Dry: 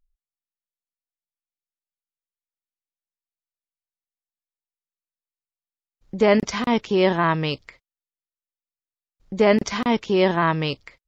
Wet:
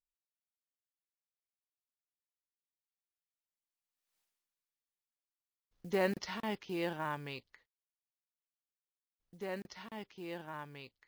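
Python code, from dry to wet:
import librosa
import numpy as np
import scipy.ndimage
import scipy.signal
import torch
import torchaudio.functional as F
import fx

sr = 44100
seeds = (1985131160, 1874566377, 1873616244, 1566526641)

y = fx.doppler_pass(x, sr, speed_mps=32, closest_m=2.6, pass_at_s=4.19)
y = fx.high_shelf(y, sr, hz=6100.0, db=-6.5)
y = fx.quant_float(y, sr, bits=4)
y = fx.tilt_eq(y, sr, slope=1.5)
y = y * librosa.db_to_amplitude(13.0)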